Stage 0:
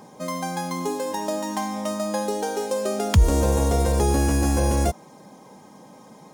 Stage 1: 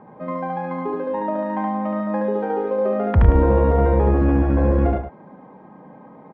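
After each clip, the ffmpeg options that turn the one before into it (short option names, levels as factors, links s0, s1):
-filter_complex "[0:a]lowpass=f=1900:w=0.5412,lowpass=f=1900:w=1.3066,asplit=2[s0][s1];[s1]aecho=0:1:72.89|105|177.8:0.891|0.447|0.282[s2];[s0][s2]amix=inputs=2:normalize=0"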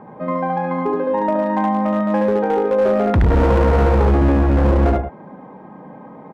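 -af "asoftclip=type=hard:threshold=0.15,volume=1.88"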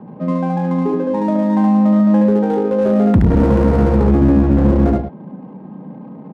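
-filter_complex "[0:a]equalizer=f=190:t=o:w=2:g=14.5,acrossover=split=350[s0][s1];[s1]adynamicsmooth=sensitivity=5:basefreq=1500[s2];[s0][s2]amix=inputs=2:normalize=0,volume=0.531"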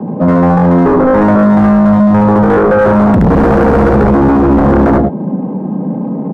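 -filter_complex "[0:a]apsyclip=5.62,acrossover=split=130|890[s0][s1][s2];[s1]aeval=exprs='1.5*sin(PI/2*2.51*val(0)/1.5)':c=same[s3];[s0][s3][s2]amix=inputs=3:normalize=0,volume=0.355"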